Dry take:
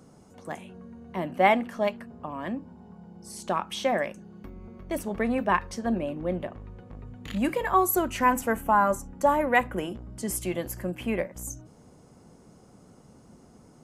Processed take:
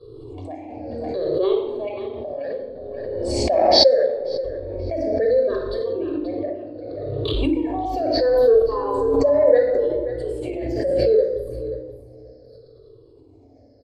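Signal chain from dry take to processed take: drifting ripple filter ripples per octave 0.63, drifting -0.7 Hz, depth 24 dB; expander -43 dBFS; FFT filter 120 Hz 0 dB, 180 Hz -28 dB, 270 Hz 0 dB, 440 Hz +12 dB, 860 Hz -8 dB, 1.3 kHz -15 dB, 1.8 kHz -11 dB, 2.9 kHz -13 dB, 4.4 kHz +11 dB, 6.4 kHz -24 dB; simulated room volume 3200 m³, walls furnished, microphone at 5.7 m; in parallel at -3 dB: compression, threshold -24 dBFS, peak gain reduction 23 dB; 5.81–7.34 s: on the sum: high-pass 92 Hz 24 dB/octave; on a send: feedback delay 533 ms, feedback 16%, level -12 dB; on the sum: swell ahead of each attack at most 23 dB/s; trim -11.5 dB

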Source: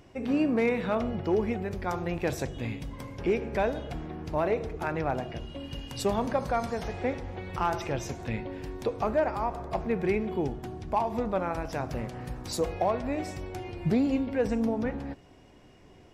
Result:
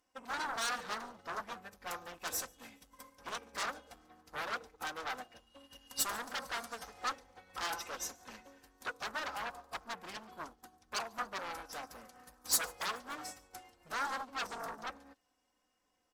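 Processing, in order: comb 3.9 ms, depth 78%; sine folder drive 15 dB, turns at -12 dBFS; pre-emphasis filter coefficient 0.97; saturation -14.5 dBFS, distortion -18 dB; resonant high shelf 1.8 kHz -7.5 dB, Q 1.5; feedback echo behind a high-pass 143 ms, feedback 65%, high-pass 4.4 kHz, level -13 dB; upward expansion 2.5:1, over -45 dBFS; trim +2 dB

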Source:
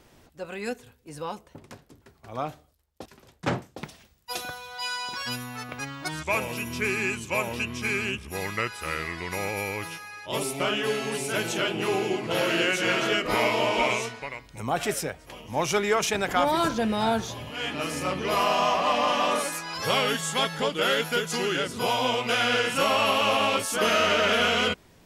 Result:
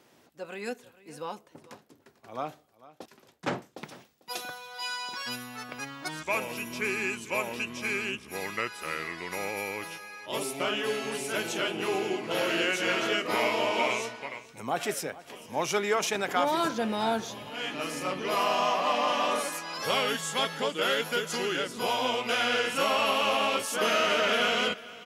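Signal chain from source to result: high-pass 190 Hz 12 dB/octave; peaking EQ 8.5 kHz -2 dB 0.22 oct; delay 446 ms -19 dB; trim -3 dB

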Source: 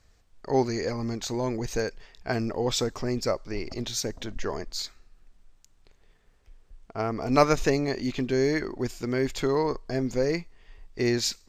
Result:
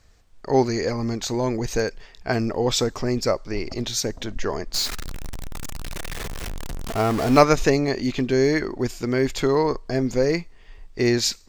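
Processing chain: 4.74–7.41 s: jump at every zero crossing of -29 dBFS; trim +5 dB

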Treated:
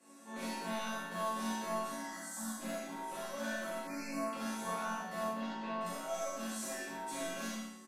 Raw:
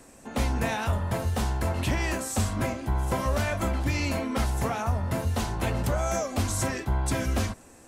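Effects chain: high-pass 230 Hz 24 dB/octave; gain riding within 3 dB 0.5 s; 1.79–2.58 s: static phaser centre 1.1 kHz, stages 4; hard clipper -27.5 dBFS, distortion -12 dB; chord resonator F#3 minor, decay 0.67 s; 5.24–5.81 s: distance through air 220 m; early reflections 39 ms -3 dB, 67 ms -3 dB; plate-style reverb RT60 0.54 s, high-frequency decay 0.95×, pre-delay 0 ms, DRR -3 dB; resampled via 32 kHz; 3.87–4.33 s: Butterworth band-stop 3.3 kHz, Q 1.2; trim +6 dB

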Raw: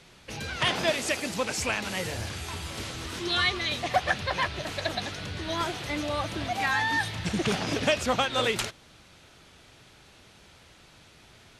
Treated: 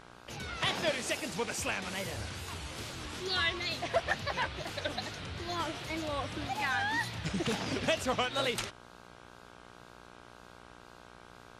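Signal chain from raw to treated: wow and flutter 150 cents; mains buzz 60 Hz, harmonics 27, -49 dBFS 0 dB/octave; trim -5.5 dB

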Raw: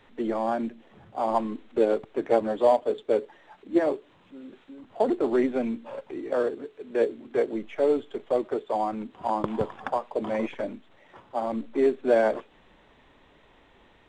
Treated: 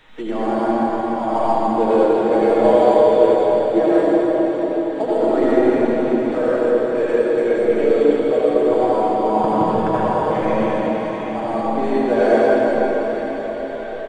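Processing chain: bass shelf 83 Hz +9 dB; comb 6.3 ms, depth 46%; reverberation RT60 5.7 s, pre-delay 71 ms, DRR -10.5 dB; tape noise reduction on one side only encoder only; trim -1 dB

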